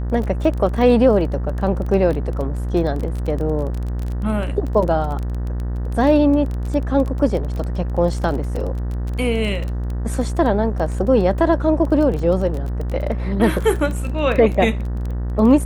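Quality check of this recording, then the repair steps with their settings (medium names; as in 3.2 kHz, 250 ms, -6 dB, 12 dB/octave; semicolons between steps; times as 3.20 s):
buzz 60 Hz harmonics 32 -23 dBFS
crackle 21 per s -24 dBFS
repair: de-click; de-hum 60 Hz, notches 32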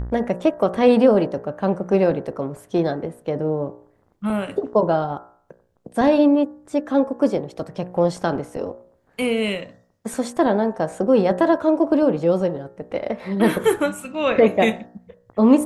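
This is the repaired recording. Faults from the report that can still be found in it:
nothing left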